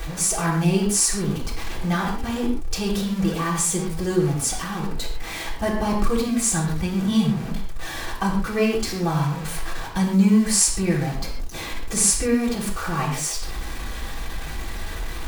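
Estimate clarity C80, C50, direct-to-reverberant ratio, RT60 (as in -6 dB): 7.5 dB, 4.5 dB, -4.5 dB, no single decay rate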